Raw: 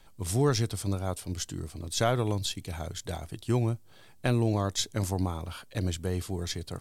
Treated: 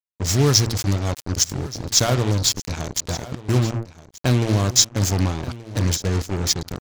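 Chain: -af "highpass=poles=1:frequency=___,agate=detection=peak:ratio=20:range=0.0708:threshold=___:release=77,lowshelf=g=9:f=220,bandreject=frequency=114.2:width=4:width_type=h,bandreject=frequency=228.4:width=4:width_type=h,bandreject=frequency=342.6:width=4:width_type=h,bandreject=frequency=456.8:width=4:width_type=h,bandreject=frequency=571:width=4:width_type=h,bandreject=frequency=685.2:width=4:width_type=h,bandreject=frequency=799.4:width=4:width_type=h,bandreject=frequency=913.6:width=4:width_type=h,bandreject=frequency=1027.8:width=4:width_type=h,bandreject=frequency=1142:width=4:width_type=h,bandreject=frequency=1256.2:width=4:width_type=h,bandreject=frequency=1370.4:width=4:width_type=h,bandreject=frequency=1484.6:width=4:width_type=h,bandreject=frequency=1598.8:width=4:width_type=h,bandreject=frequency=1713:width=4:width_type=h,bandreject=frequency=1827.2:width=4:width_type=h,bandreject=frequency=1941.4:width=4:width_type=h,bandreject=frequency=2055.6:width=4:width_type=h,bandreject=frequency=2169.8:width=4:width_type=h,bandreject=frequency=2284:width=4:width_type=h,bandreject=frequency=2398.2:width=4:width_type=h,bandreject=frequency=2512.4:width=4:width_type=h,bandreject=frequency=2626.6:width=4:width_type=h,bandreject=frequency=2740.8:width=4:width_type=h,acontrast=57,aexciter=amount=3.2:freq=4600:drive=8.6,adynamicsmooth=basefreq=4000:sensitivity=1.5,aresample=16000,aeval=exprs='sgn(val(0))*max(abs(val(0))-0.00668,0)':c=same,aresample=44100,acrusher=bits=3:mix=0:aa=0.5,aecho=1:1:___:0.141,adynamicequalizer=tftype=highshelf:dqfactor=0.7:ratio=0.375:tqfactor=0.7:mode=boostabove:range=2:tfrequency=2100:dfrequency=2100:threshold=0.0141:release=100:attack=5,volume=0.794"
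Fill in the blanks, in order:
53, 0.00251, 1178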